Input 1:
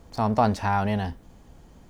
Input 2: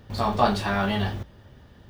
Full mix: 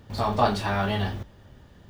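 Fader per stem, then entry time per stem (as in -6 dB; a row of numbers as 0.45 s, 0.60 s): -8.5 dB, -1.5 dB; 0.00 s, 0.00 s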